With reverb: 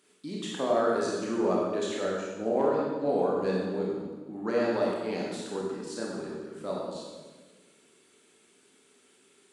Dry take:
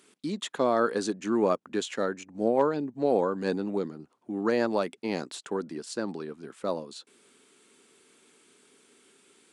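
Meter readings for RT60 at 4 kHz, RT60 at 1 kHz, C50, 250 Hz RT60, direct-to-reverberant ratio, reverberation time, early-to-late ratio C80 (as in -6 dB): 1.2 s, 1.2 s, -0.5 dB, 1.7 s, -4.5 dB, 1.3 s, 2.0 dB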